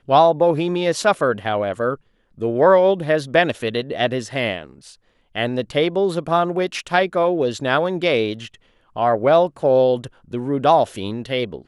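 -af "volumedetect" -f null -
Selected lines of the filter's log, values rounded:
mean_volume: -19.3 dB
max_volume: -1.8 dB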